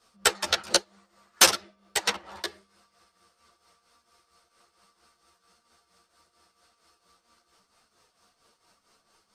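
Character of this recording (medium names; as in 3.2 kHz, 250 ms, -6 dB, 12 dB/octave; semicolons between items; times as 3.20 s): tremolo triangle 4.4 Hz, depth 75%; a shimmering, thickened sound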